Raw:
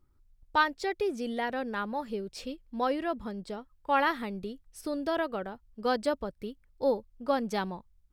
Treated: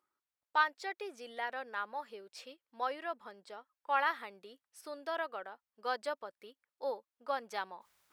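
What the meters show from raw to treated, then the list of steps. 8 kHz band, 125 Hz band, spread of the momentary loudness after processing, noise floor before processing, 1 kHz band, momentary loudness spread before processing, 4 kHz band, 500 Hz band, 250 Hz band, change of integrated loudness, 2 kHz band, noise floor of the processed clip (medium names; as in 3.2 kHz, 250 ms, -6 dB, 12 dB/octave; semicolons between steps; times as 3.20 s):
-7.5 dB, under -25 dB, 19 LU, -67 dBFS, -4.5 dB, 13 LU, -6.0 dB, -10.0 dB, -20.5 dB, -6.0 dB, -3.5 dB, under -85 dBFS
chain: high-pass 570 Hz 12 dB/octave; peaking EQ 1.4 kHz +5 dB 2.1 oct; reverse; upward compressor, threshold -44 dBFS; reverse; trim -8 dB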